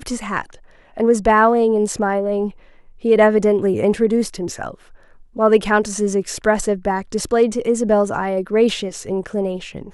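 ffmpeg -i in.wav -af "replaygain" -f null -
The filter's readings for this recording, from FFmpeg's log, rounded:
track_gain = -2.3 dB
track_peak = 0.619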